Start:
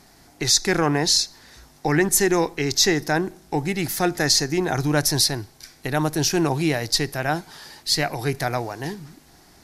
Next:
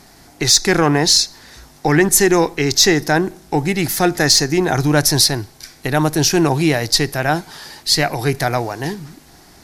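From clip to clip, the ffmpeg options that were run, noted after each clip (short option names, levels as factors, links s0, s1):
-af "asoftclip=type=tanh:threshold=0.501,volume=2.11"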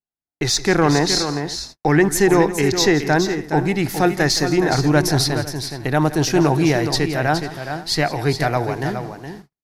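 -af "highshelf=f=3900:g=-10.5,aecho=1:1:169|418|501:0.158|0.376|0.1,agate=range=0.00224:threshold=0.0178:ratio=16:detection=peak,volume=0.891"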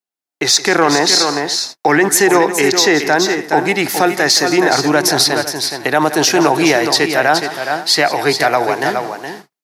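-filter_complex "[0:a]highpass=270,acrossover=split=500[s0][s1];[s1]dynaudnorm=f=160:g=5:m=2.37[s2];[s0][s2]amix=inputs=2:normalize=0,alimiter=level_in=1.88:limit=0.891:release=50:level=0:latency=1,volume=0.891"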